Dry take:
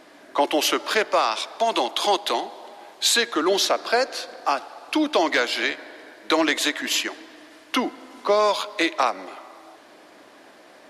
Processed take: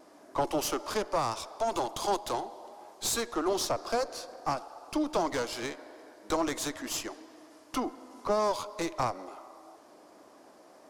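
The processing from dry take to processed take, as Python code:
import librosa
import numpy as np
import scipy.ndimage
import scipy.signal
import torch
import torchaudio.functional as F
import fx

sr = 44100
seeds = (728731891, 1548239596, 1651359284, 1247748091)

y = fx.diode_clip(x, sr, knee_db=-25.0)
y = fx.band_shelf(y, sr, hz=2500.0, db=-9.5, octaves=1.7)
y = fx.wow_flutter(y, sr, seeds[0], rate_hz=2.1, depth_cents=25.0)
y = y * 10.0 ** (-5.0 / 20.0)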